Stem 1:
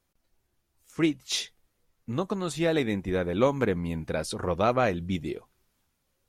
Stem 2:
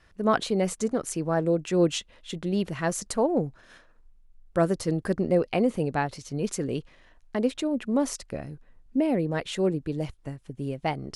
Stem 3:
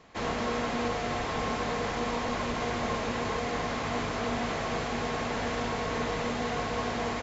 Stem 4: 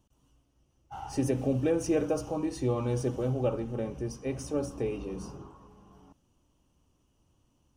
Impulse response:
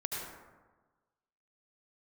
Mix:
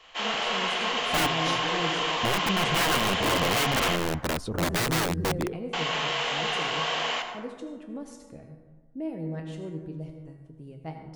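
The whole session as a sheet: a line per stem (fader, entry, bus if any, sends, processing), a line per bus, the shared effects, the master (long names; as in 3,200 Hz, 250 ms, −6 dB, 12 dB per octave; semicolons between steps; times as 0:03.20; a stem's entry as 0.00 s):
−2.0 dB, 0.15 s, no send, spectral tilt −2.5 dB per octave; wrap-around overflow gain 19.5 dB
−11.5 dB, 0.00 s, send −3 dB, low-shelf EQ 440 Hz +7.5 dB; tuned comb filter 160 Hz, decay 0.34 s, harmonics all, mix 80%
+2.5 dB, 0.00 s, muted 0:03.96–0:05.73, send −4 dB, high-pass filter 660 Hz 12 dB per octave; parametric band 3,000 Hz +14 dB 0.4 octaves; multi-voice chorus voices 4, 1.4 Hz, delay 29 ms, depth 3 ms
−13.0 dB, 0.00 s, no send, running median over 9 samples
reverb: on, RT60 1.3 s, pre-delay 68 ms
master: no processing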